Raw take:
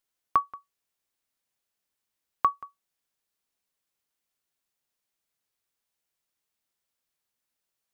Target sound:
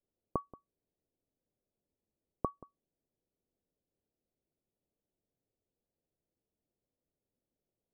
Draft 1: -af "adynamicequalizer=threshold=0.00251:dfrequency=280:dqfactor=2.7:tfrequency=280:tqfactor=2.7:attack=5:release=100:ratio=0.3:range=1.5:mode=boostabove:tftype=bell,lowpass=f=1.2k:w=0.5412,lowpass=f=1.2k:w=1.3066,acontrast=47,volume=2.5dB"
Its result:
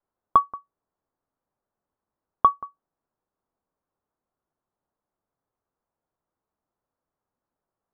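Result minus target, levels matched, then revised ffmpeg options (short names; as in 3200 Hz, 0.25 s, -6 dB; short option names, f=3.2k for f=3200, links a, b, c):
500 Hz band -16.5 dB
-af "adynamicequalizer=threshold=0.00251:dfrequency=280:dqfactor=2.7:tfrequency=280:tqfactor=2.7:attack=5:release=100:ratio=0.3:range=1.5:mode=boostabove:tftype=bell,lowpass=f=550:w=0.5412,lowpass=f=550:w=1.3066,acontrast=47,volume=2.5dB"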